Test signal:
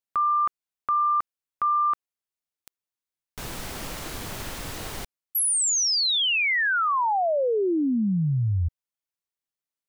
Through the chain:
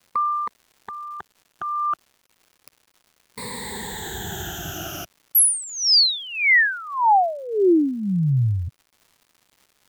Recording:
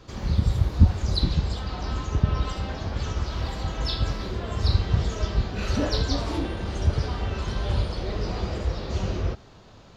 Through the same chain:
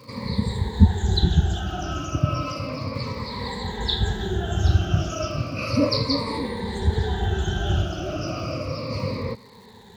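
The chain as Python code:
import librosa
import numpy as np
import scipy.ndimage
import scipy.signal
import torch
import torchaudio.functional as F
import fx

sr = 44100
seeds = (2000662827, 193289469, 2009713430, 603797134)

y = fx.spec_ripple(x, sr, per_octave=0.95, drift_hz=-0.33, depth_db=22)
y = scipy.signal.sosfilt(scipy.signal.butter(2, 100.0, 'highpass', fs=sr, output='sos'), y)
y = fx.low_shelf(y, sr, hz=210.0, db=4.0)
y = fx.dmg_crackle(y, sr, seeds[0], per_s=280.0, level_db=-43.0)
y = F.gain(torch.from_numpy(y), -1.5).numpy()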